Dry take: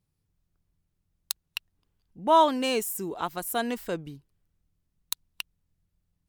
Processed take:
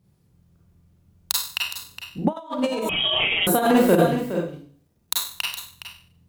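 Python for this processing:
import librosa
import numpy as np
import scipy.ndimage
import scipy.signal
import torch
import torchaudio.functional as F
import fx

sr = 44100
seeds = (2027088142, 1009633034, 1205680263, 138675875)

p1 = fx.law_mismatch(x, sr, coded='A', at=(3.98, 5.27))
p2 = scipy.signal.sosfilt(scipy.signal.butter(2, 58.0, 'highpass', fs=sr, output='sos'), p1)
p3 = p2 + fx.echo_single(p2, sr, ms=415, db=-11.5, dry=0)
p4 = fx.rev_schroeder(p3, sr, rt60_s=0.47, comb_ms=32, drr_db=-4.0)
p5 = fx.over_compress(p4, sr, threshold_db=-26.0, ratio=-0.5)
p6 = fx.freq_invert(p5, sr, carrier_hz=3500, at=(2.89, 3.47))
p7 = fx.tilt_shelf(p6, sr, db=5.0, hz=940.0)
y = p7 * 10.0 ** (6.0 / 20.0)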